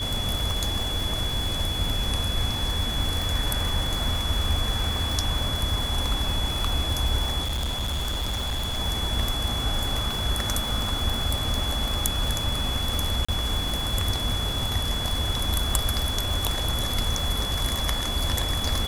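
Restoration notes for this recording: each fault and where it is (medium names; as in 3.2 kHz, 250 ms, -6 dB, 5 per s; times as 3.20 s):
crackle 230 per s -28 dBFS
whine 3.4 kHz -29 dBFS
7.43–8.80 s: clipped -24 dBFS
13.25–13.29 s: dropout 35 ms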